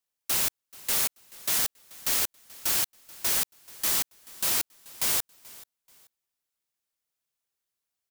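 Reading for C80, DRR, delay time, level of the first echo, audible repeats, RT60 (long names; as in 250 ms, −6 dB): no reverb audible, no reverb audible, 433 ms, −21.5 dB, 2, no reverb audible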